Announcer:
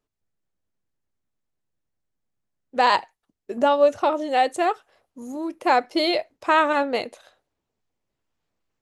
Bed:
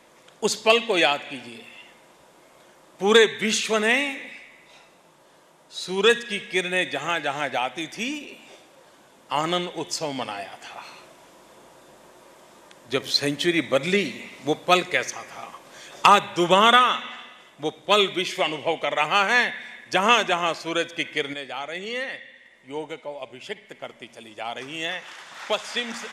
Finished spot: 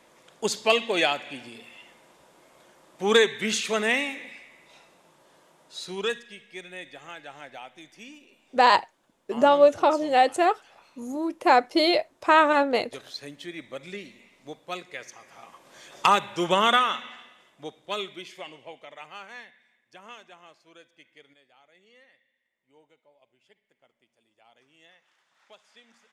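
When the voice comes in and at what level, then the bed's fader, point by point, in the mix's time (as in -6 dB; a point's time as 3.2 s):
5.80 s, +0.5 dB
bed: 5.76 s -3.5 dB
6.36 s -16.5 dB
14.87 s -16.5 dB
15.83 s -5 dB
16.93 s -5 dB
19.86 s -27.5 dB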